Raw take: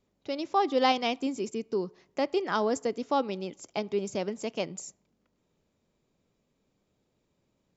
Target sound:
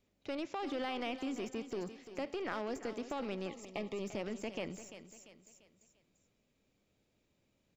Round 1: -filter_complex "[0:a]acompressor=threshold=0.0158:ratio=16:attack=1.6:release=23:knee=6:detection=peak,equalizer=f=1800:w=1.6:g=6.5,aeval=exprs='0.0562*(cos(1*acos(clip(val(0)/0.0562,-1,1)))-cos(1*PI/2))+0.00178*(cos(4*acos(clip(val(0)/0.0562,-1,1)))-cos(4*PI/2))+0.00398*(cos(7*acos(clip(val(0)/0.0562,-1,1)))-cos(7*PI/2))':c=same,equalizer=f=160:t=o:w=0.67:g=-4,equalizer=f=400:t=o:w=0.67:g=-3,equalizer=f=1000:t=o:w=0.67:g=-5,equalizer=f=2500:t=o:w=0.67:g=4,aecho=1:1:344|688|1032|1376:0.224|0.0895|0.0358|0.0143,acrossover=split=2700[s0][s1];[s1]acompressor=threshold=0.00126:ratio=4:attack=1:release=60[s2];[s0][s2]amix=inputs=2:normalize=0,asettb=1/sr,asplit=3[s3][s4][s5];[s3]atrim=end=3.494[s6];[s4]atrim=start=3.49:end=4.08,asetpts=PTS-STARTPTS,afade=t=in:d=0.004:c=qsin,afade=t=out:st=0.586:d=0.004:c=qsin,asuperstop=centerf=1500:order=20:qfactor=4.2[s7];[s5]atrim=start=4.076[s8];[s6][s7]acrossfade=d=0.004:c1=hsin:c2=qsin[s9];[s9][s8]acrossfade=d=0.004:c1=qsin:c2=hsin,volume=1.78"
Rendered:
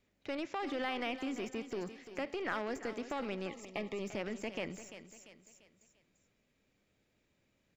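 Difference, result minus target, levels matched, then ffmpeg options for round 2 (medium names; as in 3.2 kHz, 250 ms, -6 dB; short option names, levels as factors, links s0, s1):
2 kHz band +3.5 dB
-filter_complex "[0:a]acompressor=threshold=0.0158:ratio=16:attack=1.6:release=23:knee=6:detection=peak,aeval=exprs='0.0562*(cos(1*acos(clip(val(0)/0.0562,-1,1)))-cos(1*PI/2))+0.00178*(cos(4*acos(clip(val(0)/0.0562,-1,1)))-cos(4*PI/2))+0.00398*(cos(7*acos(clip(val(0)/0.0562,-1,1)))-cos(7*PI/2))':c=same,equalizer=f=160:t=o:w=0.67:g=-4,equalizer=f=400:t=o:w=0.67:g=-3,equalizer=f=1000:t=o:w=0.67:g=-5,equalizer=f=2500:t=o:w=0.67:g=4,aecho=1:1:344|688|1032|1376:0.224|0.0895|0.0358|0.0143,acrossover=split=2700[s0][s1];[s1]acompressor=threshold=0.00126:ratio=4:attack=1:release=60[s2];[s0][s2]amix=inputs=2:normalize=0,asettb=1/sr,asplit=3[s3][s4][s5];[s3]atrim=end=3.494[s6];[s4]atrim=start=3.49:end=4.08,asetpts=PTS-STARTPTS,afade=t=in:d=0.004:c=qsin,afade=t=out:st=0.586:d=0.004:c=qsin,asuperstop=centerf=1500:order=20:qfactor=4.2[s7];[s5]atrim=start=4.076[s8];[s6][s7]acrossfade=d=0.004:c1=hsin:c2=qsin[s9];[s9][s8]acrossfade=d=0.004:c1=qsin:c2=hsin,volume=1.78"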